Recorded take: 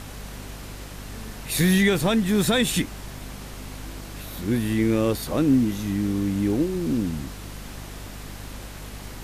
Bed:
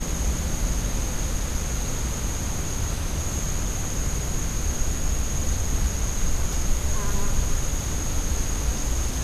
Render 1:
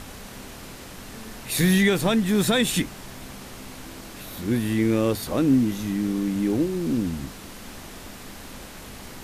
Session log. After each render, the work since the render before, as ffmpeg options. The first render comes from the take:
-af "bandreject=f=50:t=h:w=6,bandreject=f=100:t=h:w=6,bandreject=f=150:t=h:w=6"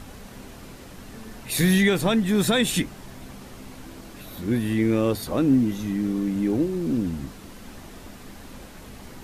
-af "afftdn=nr=6:nf=-41"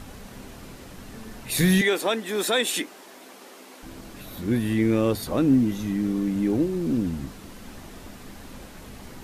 -filter_complex "[0:a]asettb=1/sr,asplit=3[s0][s1][s2];[s0]atrim=end=1.814[s3];[s1]atrim=start=1.81:end=3.83,asetpts=PTS-STARTPTS,afade=t=in:d=0.004:c=qsin,afade=t=out:st=2.016:d=0.004:c=qsin,highpass=f=310:w=0.5412,highpass=f=310:w=1.3066[s4];[s2]atrim=start=3.826[s5];[s3][s4]acrossfade=d=0.004:c1=hsin:c2=qsin[s6];[s6][s5]acrossfade=d=0.004:c1=qsin:c2=hsin"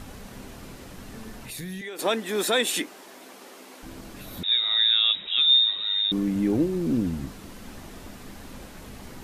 -filter_complex "[0:a]asettb=1/sr,asplit=3[s0][s1][s2];[s0]atrim=end=1.314[s3];[s1]atrim=start=1.31:end=1.99,asetpts=PTS-STARTPTS,afade=t=in:d=0.004:c=qsin,afade=t=out:st=0.676:d=0.004:c=qsin,acompressor=threshold=0.0158:ratio=4:attack=3.2:release=140:knee=1:detection=peak[s4];[s2]atrim=start=1.986[s5];[s3][s4]acrossfade=d=0.004:c1=hsin:c2=qsin[s6];[s6][s5]acrossfade=d=0.004:c1=qsin:c2=hsin,asettb=1/sr,asplit=3[s7][s8][s9];[s7]atrim=end=4.434[s10];[s8]atrim=start=4.43:end=6.12,asetpts=PTS-STARTPTS,afade=t=in:d=0.004:c=qsin,afade=t=out:st=1.686:d=0.004:c=qsin,lowpass=f=3300:t=q:w=0.5098,lowpass=f=3300:t=q:w=0.6013,lowpass=f=3300:t=q:w=0.9,lowpass=f=3300:t=q:w=2.563,afreqshift=-3900[s11];[s9]atrim=start=6.116[s12];[s10][s11]acrossfade=d=0.004:c1=hsin:c2=qsin[s13];[s13][s12]acrossfade=d=0.004:c1=qsin:c2=hsin"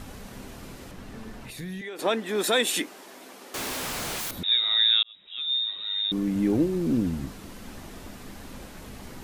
-filter_complex "[0:a]asettb=1/sr,asplit=3[s0][s1][s2];[s0]atrim=end=0.914[s3];[s1]atrim=start=0.91:end=2.44,asetpts=PTS-STARTPTS,afade=t=in:d=0.004:c=qsin,afade=t=out:st=1.526:d=0.004:c=qsin,highshelf=f=5200:g=-8.5[s4];[s2]atrim=start=2.436[s5];[s3][s4]acrossfade=d=0.004:c1=hsin:c2=qsin[s6];[s6][s5]acrossfade=d=0.004:c1=qsin:c2=hsin,asettb=1/sr,asplit=3[s7][s8][s9];[s7]atrim=end=3.544[s10];[s8]atrim=start=3.54:end=4.31,asetpts=PTS-STARTPTS,afade=t=in:d=0.004:c=qsin,afade=t=out:st=0.766:d=0.004:c=qsin,aeval=exprs='0.0355*sin(PI/2*7.94*val(0)/0.0355)':c=same[s11];[s9]atrim=start=4.306[s12];[s10][s11]acrossfade=d=0.004:c1=hsin:c2=qsin[s13];[s13][s12]acrossfade=d=0.004:c1=qsin:c2=hsin,asplit=2[s14][s15];[s14]atrim=end=5.03,asetpts=PTS-STARTPTS,afade=t=out:st=5.026:d=0.004:c=hsin[s16];[s15]atrim=start=5.03,asetpts=PTS-STARTPTS,afade=t=in:d=1.42[s17];[s16][s17]concat=n=2:v=0:a=1"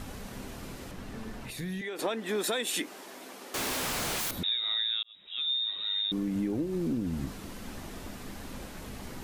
-af "acompressor=threshold=0.0447:ratio=12"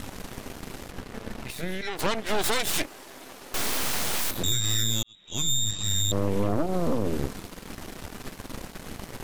-af "aeval=exprs='0.119*(cos(1*acos(clip(val(0)/0.119,-1,1)))-cos(1*PI/2))+0.0596*(cos(6*acos(clip(val(0)/0.119,-1,1)))-cos(6*PI/2))':c=same"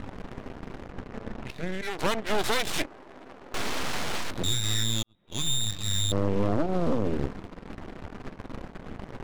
-af "adynamicsmooth=sensitivity=7.5:basefreq=900"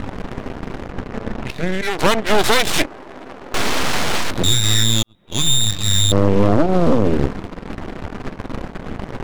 -af "volume=3.76"

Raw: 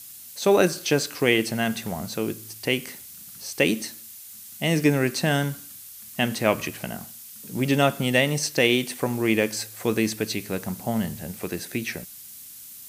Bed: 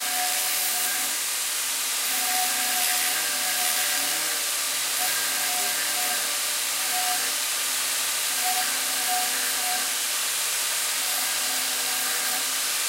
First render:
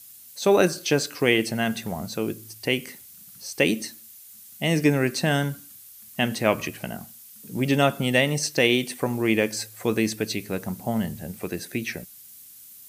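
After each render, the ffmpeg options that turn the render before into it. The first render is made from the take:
-af "afftdn=nr=6:nf=-43"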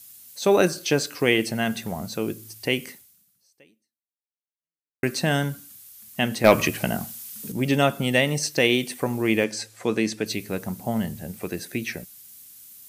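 -filter_complex "[0:a]asettb=1/sr,asplit=3[s0][s1][s2];[s0]atrim=end=6.444[s3];[s1]atrim=start=6.44:end=7.52,asetpts=PTS-STARTPTS,afade=t=in:d=0.004:c=qsin,afade=t=out:st=1.076:d=0.004:c=qsin,aeval=exprs='0.596*sin(PI/2*1.58*val(0)/0.596)':c=same[s4];[s2]atrim=start=7.516[s5];[s3][s4]acrossfade=d=0.004:c1=hsin:c2=qsin[s6];[s6][s5]acrossfade=d=0.004:c1=qsin:c2=hsin,asettb=1/sr,asplit=3[s7][s8][s9];[s7]atrim=end=9.444[s10];[s8]atrim=start=9.44:end=10.26,asetpts=PTS-STARTPTS,afade=t=in:d=0.004:c=qsin,afade=t=out:st=0.816:d=0.004:c=qsin,highpass=130,lowpass=7900[s11];[s9]atrim=start=10.256[s12];[s10][s11]acrossfade=d=0.004:c1=hsin:c2=qsin[s13];[s13][s12]acrossfade=d=0.004:c1=qsin:c2=hsin,asplit=2[s14][s15];[s14]atrim=end=5.03,asetpts=PTS-STARTPTS,afade=t=out:st=2.89:d=2.14:c=exp[s16];[s15]atrim=start=5.03,asetpts=PTS-STARTPTS,afade=t=in:d=0.004:c=hsin[s17];[s16][s17]concat=n=2:v=0:a=1"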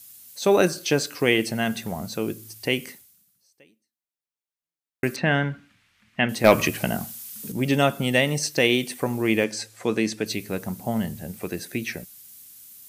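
-filter_complex "[0:a]asettb=1/sr,asplit=3[s0][s1][s2];[s0]atrim=end=5.164[s3];[s1]atrim=start=5.16:end=6.29,asetpts=PTS-STARTPTS,afade=t=in:d=0.004:c=qsin,afade=t=out:st=1.126:d=0.004:c=qsin,lowpass=f=2200:t=q:w=1.8[s4];[s2]atrim=start=6.286[s5];[s3][s4]acrossfade=d=0.004:c1=hsin:c2=qsin[s6];[s6][s5]acrossfade=d=0.004:c1=qsin:c2=hsin"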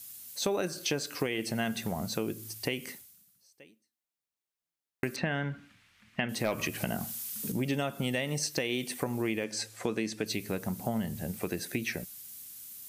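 -af "alimiter=limit=0.316:level=0:latency=1:release=176,acompressor=threshold=0.0355:ratio=4"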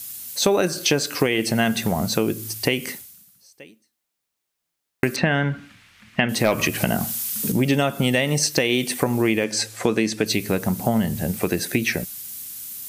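-af "volume=3.76"

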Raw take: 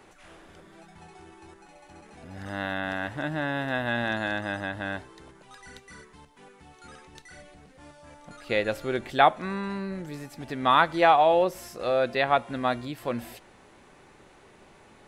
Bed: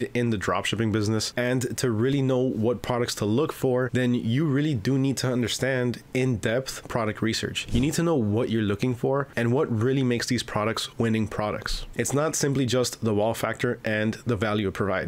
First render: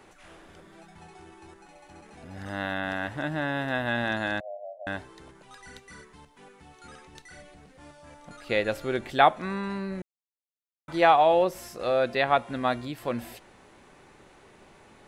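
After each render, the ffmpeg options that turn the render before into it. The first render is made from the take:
-filter_complex "[0:a]asettb=1/sr,asplit=3[s0][s1][s2];[s0]atrim=end=4.404[s3];[s1]atrim=start=4.4:end=4.87,asetpts=PTS-STARTPTS,afade=t=in:d=0.004:c=qsin,afade=t=out:st=0.466:d=0.004:c=qsin,asuperpass=centerf=620:order=8:qfactor=3.2[s4];[s2]atrim=start=4.866[s5];[s3][s4]acrossfade=d=0.004:c1=hsin:c2=qsin[s6];[s6][s5]acrossfade=d=0.004:c1=qsin:c2=hsin,asplit=3[s7][s8][s9];[s7]atrim=end=10.02,asetpts=PTS-STARTPTS,afade=t=out:st=10.016:d=0.004:c=hsin[s10];[s8]atrim=start=10.02:end=10.88,asetpts=PTS-STARTPTS,volume=0[s11];[s9]atrim=start=10.88,asetpts=PTS-STARTPTS,afade=t=in:d=0.004:c=hsin[s12];[s10][s11][s12]concat=n=3:v=0:a=1"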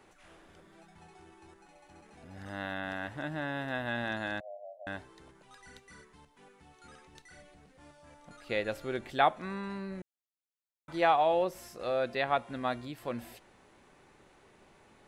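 -af "volume=0.473"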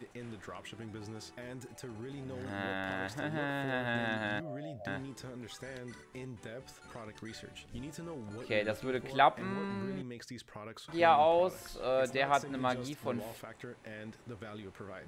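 -filter_complex "[1:a]volume=0.0891[s0];[0:a][s0]amix=inputs=2:normalize=0"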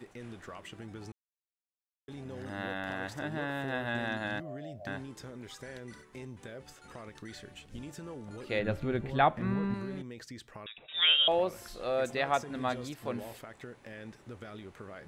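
-filter_complex "[0:a]asettb=1/sr,asplit=3[s0][s1][s2];[s0]atrim=end=8.594[s3];[s1]atrim=start=8.59:end=9.74,asetpts=PTS-STARTPTS,afade=t=in:d=0.004:c=qsin,afade=t=out:st=1.146:d=0.004:c=qsin,bass=f=250:g=11,treble=f=4000:g=-9[s4];[s2]atrim=start=9.736[s5];[s3][s4]acrossfade=d=0.004:c1=hsin:c2=qsin[s6];[s6][s5]acrossfade=d=0.004:c1=qsin:c2=hsin,asettb=1/sr,asplit=3[s7][s8][s9];[s7]atrim=end=10.664[s10];[s8]atrim=start=10.66:end=11.28,asetpts=PTS-STARTPTS,afade=t=in:d=0.004:c=qsin,afade=t=out:st=0.616:d=0.004:c=qsin,lowpass=f=3300:t=q:w=0.5098,lowpass=f=3300:t=q:w=0.6013,lowpass=f=3300:t=q:w=0.9,lowpass=f=3300:t=q:w=2.563,afreqshift=-3900[s11];[s9]atrim=start=11.276[s12];[s10][s11]acrossfade=d=0.004:c1=hsin:c2=qsin[s13];[s13][s12]acrossfade=d=0.004:c1=qsin:c2=hsin,asplit=3[s14][s15][s16];[s14]atrim=end=1.12,asetpts=PTS-STARTPTS,afade=t=out:st=1.116:d=0.004:c=hsin[s17];[s15]atrim=start=1.12:end=2.08,asetpts=PTS-STARTPTS,volume=0[s18];[s16]atrim=start=2.08,asetpts=PTS-STARTPTS,afade=t=in:d=0.004:c=hsin[s19];[s17][s18][s19]concat=n=3:v=0:a=1"

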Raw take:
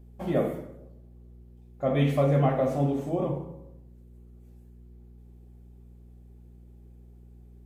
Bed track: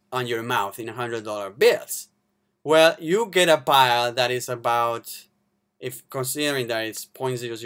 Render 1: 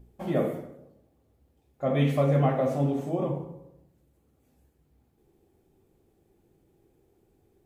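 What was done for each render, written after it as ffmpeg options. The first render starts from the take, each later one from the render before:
-af "bandreject=f=60:t=h:w=4,bandreject=f=120:t=h:w=4,bandreject=f=180:t=h:w=4,bandreject=f=240:t=h:w=4,bandreject=f=300:t=h:w=4,bandreject=f=360:t=h:w=4,bandreject=f=420:t=h:w=4,bandreject=f=480:t=h:w=4,bandreject=f=540:t=h:w=4,bandreject=f=600:t=h:w=4,bandreject=f=660:t=h:w=4,bandreject=f=720:t=h:w=4"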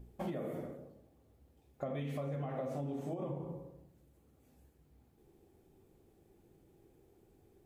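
-af "alimiter=limit=0.0708:level=0:latency=1:release=251,acompressor=threshold=0.0158:ratio=6"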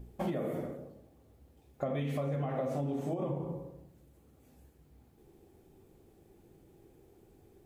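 -af "volume=1.78"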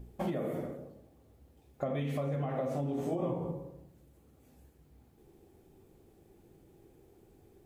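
-filter_complex "[0:a]asettb=1/sr,asplit=3[s0][s1][s2];[s0]atrim=end=2.964[s3];[s1]atrim=start=2.96:end=3.51,asetpts=PTS-STARTPTS,afade=t=in:d=0.004:c=qsin,afade=t=out:st=0.546:d=0.004:c=qsin,asplit=2[s4][s5];[s5]adelay=17,volume=0.794[s6];[s4][s6]amix=inputs=2:normalize=0,atrim=end_sample=24255[s7];[s2]atrim=start=3.506[s8];[s3][s7]acrossfade=d=0.004:c1=hsin:c2=qsin[s9];[s9][s8]acrossfade=d=0.004:c1=qsin:c2=hsin"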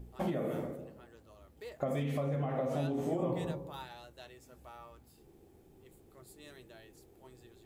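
-filter_complex "[1:a]volume=0.0299[s0];[0:a][s0]amix=inputs=2:normalize=0"

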